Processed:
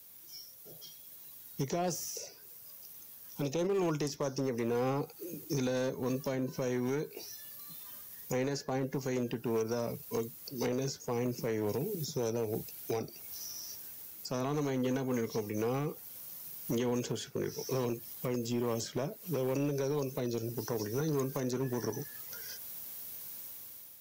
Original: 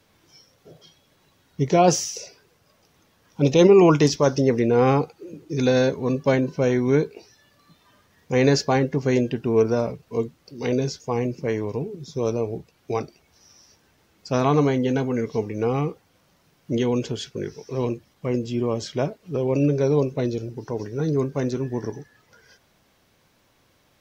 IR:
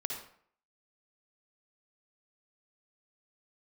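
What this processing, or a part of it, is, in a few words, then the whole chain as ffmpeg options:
FM broadcast chain: -filter_complex "[0:a]highpass=74,dynaudnorm=f=650:g=3:m=10dB,acrossover=split=110|610|1800[a][b][c][d];[a]acompressor=threshold=-40dB:ratio=4[e];[b]acompressor=threshold=-20dB:ratio=4[f];[c]acompressor=threshold=-29dB:ratio=4[g];[d]acompressor=threshold=-46dB:ratio=4[h];[e][f][g][h]amix=inputs=4:normalize=0,aemphasis=mode=production:type=50fm,alimiter=limit=-15dB:level=0:latency=1:release=245,asoftclip=type=hard:threshold=-18.5dB,lowpass=f=15k:w=0.5412,lowpass=f=15k:w=1.3066,aemphasis=mode=production:type=50fm,asettb=1/sr,asplit=3[i][j][k];[i]atrim=end=11.514[l];[j]atrim=start=11.51:end=13.01,asetpts=PTS-STARTPTS,afade=t=in:d=0.004:c=qsin,afade=t=out:st=1.496:d=0.004:c=qsin,bandreject=f=1.1k:w=5.5[m];[k]atrim=start=13.006[n];[l][m]acrossfade=d=0.004:c1=hsin:c2=qsin[o];[o][n]acrossfade=d=0.004:c1=qsin:c2=hsin,volume=-8dB"

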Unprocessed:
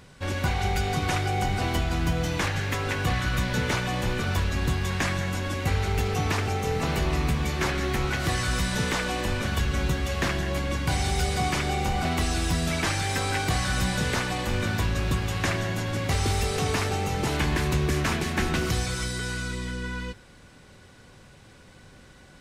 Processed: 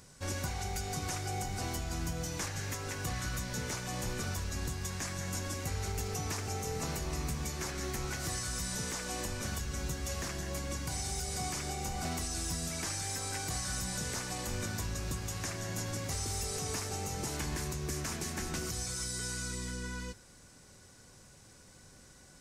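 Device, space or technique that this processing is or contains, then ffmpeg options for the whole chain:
over-bright horn tweeter: -af "highshelf=f=4.5k:t=q:w=1.5:g=9.5,alimiter=limit=-18.5dB:level=0:latency=1:release=394,volume=-7.5dB"

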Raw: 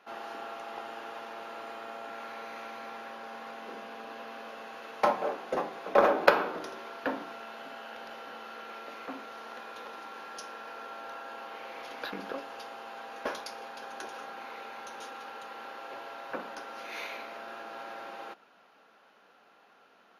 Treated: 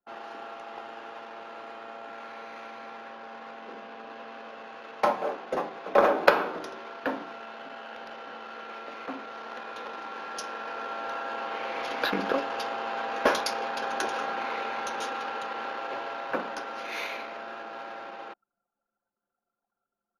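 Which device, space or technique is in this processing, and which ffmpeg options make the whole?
voice memo with heavy noise removal: -af "anlmdn=0.0251,dynaudnorm=f=320:g=31:m=13dB"

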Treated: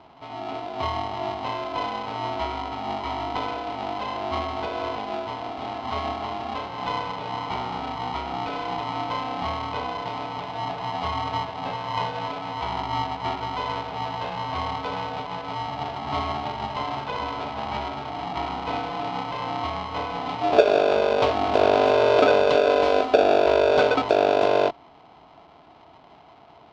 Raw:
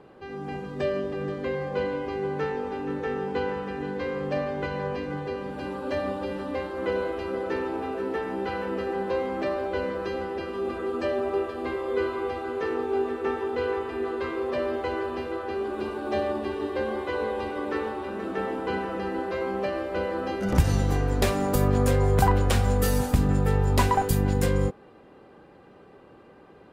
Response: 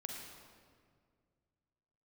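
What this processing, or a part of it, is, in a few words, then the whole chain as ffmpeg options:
ring modulator pedal into a guitar cabinet: -af "aeval=exprs='val(0)*sgn(sin(2*PI*510*n/s))':c=same,highpass=78,equalizer=f=110:t=q:w=4:g=-8,equalizer=f=200:t=q:w=4:g=-4,equalizer=f=450:t=q:w=4:g=4,equalizer=f=690:t=q:w=4:g=9,equalizer=f=1.8k:t=q:w=4:g=-10,lowpass=f=4.2k:w=0.5412,lowpass=f=4.2k:w=1.3066"

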